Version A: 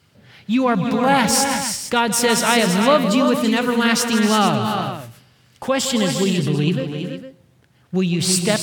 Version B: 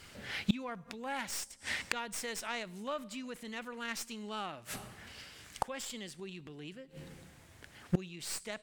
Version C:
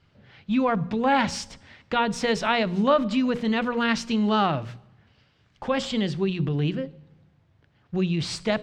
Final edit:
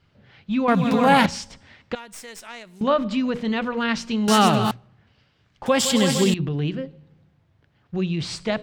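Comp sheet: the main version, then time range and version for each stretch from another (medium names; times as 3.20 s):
C
0.68–1.26 s: from A
1.95–2.81 s: from B
4.28–4.71 s: from A
5.66–6.34 s: from A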